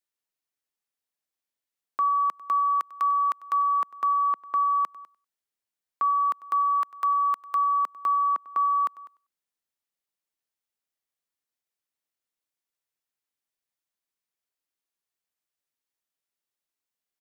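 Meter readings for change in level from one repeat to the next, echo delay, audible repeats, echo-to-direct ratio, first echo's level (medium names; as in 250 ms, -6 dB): -15.5 dB, 97 ms, 2, -19.5 dB, -19.5 dB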